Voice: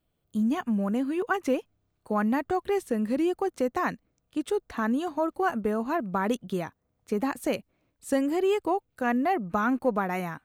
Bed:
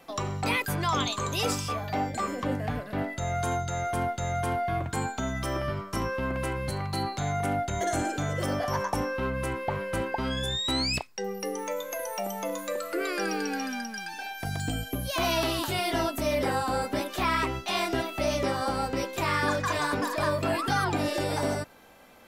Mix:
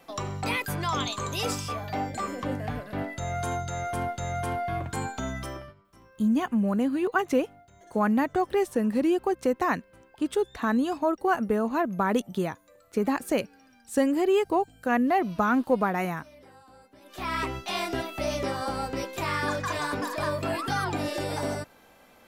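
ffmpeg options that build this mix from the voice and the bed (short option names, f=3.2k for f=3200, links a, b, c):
-filter_complex "[0:a]adelay=5850,volume=2dB[a];[1:a]volume=22dB,afade=t=out:st=5.31:d=0.43:silence=0.0630957,afade=t=in:st=17.01:d=0.4:silence=0.0668344[b];[a][b]amix=inputs=2:normalize=0"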